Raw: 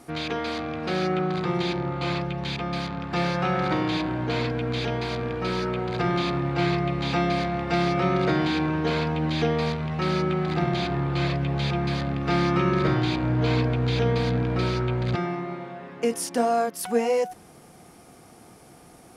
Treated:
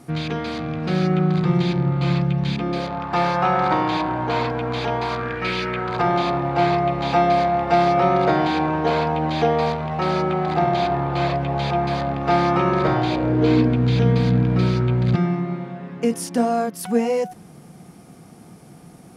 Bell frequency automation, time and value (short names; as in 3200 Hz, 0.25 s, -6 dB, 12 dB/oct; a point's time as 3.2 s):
bell +12 dB 1.2 oct
2.46 s 150 Hz
3.01 s 910 Hz
5.05 s 910 Hz
5.58 s 2800 Hz
6.09 s 760 Hz
12.97 s 760 Hz
13.93 s 170 Hz